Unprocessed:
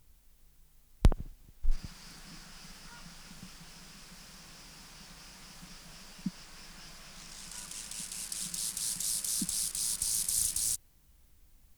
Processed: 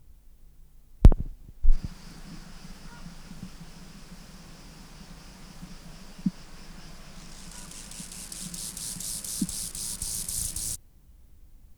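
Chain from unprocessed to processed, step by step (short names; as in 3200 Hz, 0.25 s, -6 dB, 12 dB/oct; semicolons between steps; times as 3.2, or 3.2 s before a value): tilt shelf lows +5.5 dB, about 840 Hz; gain +4 dB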